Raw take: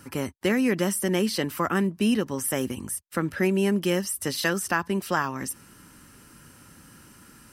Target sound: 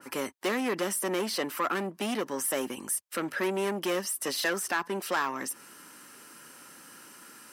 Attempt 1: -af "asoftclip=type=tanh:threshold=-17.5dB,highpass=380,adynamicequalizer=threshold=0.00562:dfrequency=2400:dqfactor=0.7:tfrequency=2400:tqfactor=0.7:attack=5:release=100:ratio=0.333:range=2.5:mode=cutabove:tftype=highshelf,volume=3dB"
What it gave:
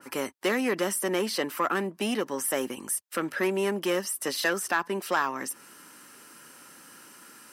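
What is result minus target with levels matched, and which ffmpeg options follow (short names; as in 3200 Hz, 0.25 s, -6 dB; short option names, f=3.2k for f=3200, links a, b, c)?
soft clip: distortion -6 dB
-af "asoftclip=type=tanh:threshold=-23.5dB,highpass=380,adynamicequalizer=threshold=0.00562:dfrequency=2400:dqfactor=0.7:tfrequency=2400:tqfactor=0.7:attack=5:release=100:ratio=0.333:range=2.5:mode=cutabove:tftype=highshelf,volume=3dB"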